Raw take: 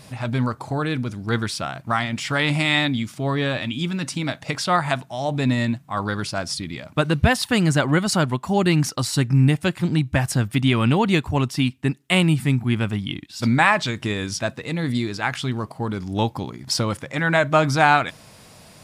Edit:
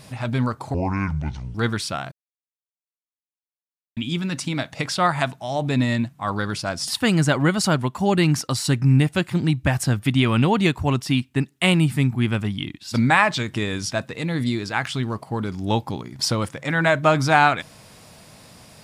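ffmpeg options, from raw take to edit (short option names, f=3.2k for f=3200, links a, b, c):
-filter_complex "[0:a]asplit=6[a][b][c][d][e][f];[a]atrim=end=0.744[g];[b]atrim=start=0.74:end=1.24,asetpts=PTS-STARTPTS,asetrate=27342,aresample=44100[h];[c]atrim=start=1.236:end=1.81,asetpts=PTS-STARTPTS,afade=t=out:st=0.57:d=0.004:c=hsin[i];[d]atrim=start=1.81:end=3.66,asetpts=PTS-STARTPTS,volume=0[j];[e]atrim=start=3.66:end=6.572,asetpts=PTS-STARTPTS,afade=t=in:d=0.004:c=hsin[k];[f]atrim=start=7.358[l];[g][h]acrossfade=d=0.004:c1=hsin:c2=hsin[m];[i][j][k]concat=n=3:v=0:a=1[n];[m][n]acrossfade=d=0.004:c1=hsin:c2=hsin[o];[o][l]acrossfade=d=0.004:c1=hsin:c2=hsin"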